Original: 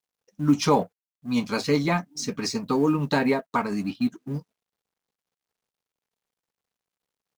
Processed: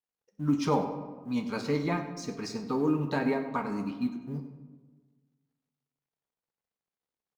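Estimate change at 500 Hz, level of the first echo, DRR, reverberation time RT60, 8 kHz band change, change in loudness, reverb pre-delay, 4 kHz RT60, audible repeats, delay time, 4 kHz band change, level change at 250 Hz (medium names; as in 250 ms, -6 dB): -5.5 dB, -14.5 dB, 6.5 dB, 1.4 s, -11.5 dB, -6.0 dB, 17 ms, 0.75 s, 1, 98 ms, -10.5 dB, -5.5 dB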